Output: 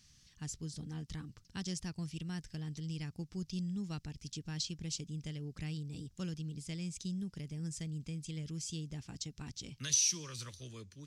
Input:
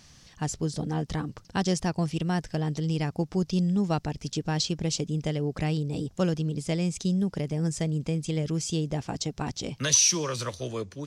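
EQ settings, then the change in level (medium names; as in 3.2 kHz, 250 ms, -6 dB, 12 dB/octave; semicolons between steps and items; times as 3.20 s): amplifier tone stack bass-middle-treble 6-0-2; bass shelf 200 Hz -4 dB; +6.0 dB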